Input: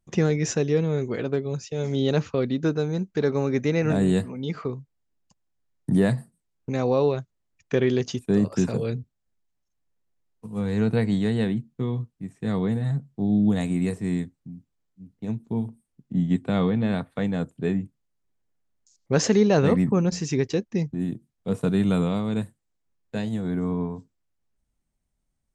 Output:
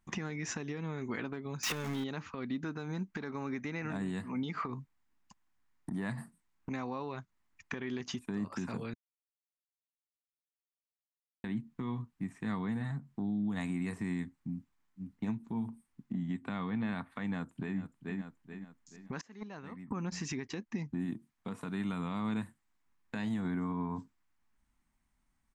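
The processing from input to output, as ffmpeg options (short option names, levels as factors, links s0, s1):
-filter_complex "[0:a]asettb=1/sr,asplit=3[s0][s1][s2];[s0]atrim=end=1.634[s3];[s1]atrim=start=1.63:end=2.04,asetpts=PTS-STARTPTS,afade=t=in:d=0.004:c=qsin,afade=t=out:st=0.406:d=0.004:c=qsin,aeval=exprs='val(0)+0.5*0.0422*sgn(val(0))':c=same[s4];[s2]atrim=start=2.036[s5];[s3][s4]acrossfade=d=0.004:c1=hsin:c2=qsin[s6];[s6][s5]acrossfade=d=0.004:c1=qsin:c2=hsin,asettb=1/sr,asplit=3[s7][s8][s9];[s7]atrim=end=4.624[s10];[s8]atrim=start=4.62:end=6.71,asetpts=PTS-STARTPTS,afade=t=in:d=0.004:c=qsin,afade=t=out:st=2.086:d=0.004:c=qsin,acompressor=threshold=0.0501:ratio=6:attack=3.2:release=140:knee=1:detection=peak[s11];[s9]atrim=start=6.706[s12];[s10][s11]acrossfade=d=0.004:c1=hsin:c2=qsin[s13];[s13][s12]acrossfade=d=0.004:c1=qsin:c2=hsin,asplit=2[s14][s15];[s15]afade=t=in:st=17.22:d=0.01,afade=t=out:st=17.78:d=0.01,aecho=0:1:430|860|1290|1720:0.177828|0.0711312|0.0284525|0.011381[s16];[s14][s16]amix=inputs=2:normalize=0,asettb=1/sr,asplit=3[s17][s18][s19];[s17]atrim=end=19.214[s20];[s18]atrim=start=19.21:end=19.91,asetpts=PTS-STARTPTS,afade=t=in:d=0.004:c=qsin,afade=t=out:st=0.696:d=0.004:c=qsin,agate=range=0.0398:threshold=0.224:ratio=16:release=100:detection=peak[s21];[s19]atrim=start=19.906[s22];[s20][s21]acrossfade=d=0.004:c1=hsin:c2=qsin[s23];[s23][s22]acrossfade=d=0.004:c1=qsin:c2=hsin,asettb=1/sr,asplit=3[s24][s25][s26];[s24]atrim=end=21.064[s27];[s25]atrim=start=21.06:end=21.93,asetpts=PTS-STARTPTS,afade=t=in:d=0.004:c=qsin,afade=t=out:st=0.866:d=0.004:c=qsin,lowshelf=f=180:g=-5[s28];[s26]atrim=start=21.926[s29];[s27][s28]acrossfade=d=0.004:c1=hsin:c2=qsin[s30];[s30][s29]acrossfade=d=0.004:c1=qsin:c2=hsin,asplit=3[s31][s32][s33];[s31]atrim=end=8.94,asetpts=PTS-STARTPTS,afade=t=out:st=8.936:d=0.004:c=hsin[s34];[s32]atrim=start=8.94:end=11.44,asetpts=PTS-STARTPTS,volume=0[s35];[s33]atrim=start=11.44,asetpts=PTS-STARTPTS,afade=t=in:d=0.004:c=hsin[s36];[s34][s35][s36]concat=n=3:v=0:a=1,acompressor=threshold=0.0282:ratio=6,alimiter=level_in=1.78:limit=0.0631:level=0:latency=1:release=164,volume=0.562,equalizer=f=125:t=o:w=1:g=-4,equalizer=f=250:t=o:w=1:g=6,equalizer=f=500:t=o:w=1:g=-9,equalizer=f=1000:t=o:w=1:g=10,equalizer=f=2000:t=o:w=1:g=7"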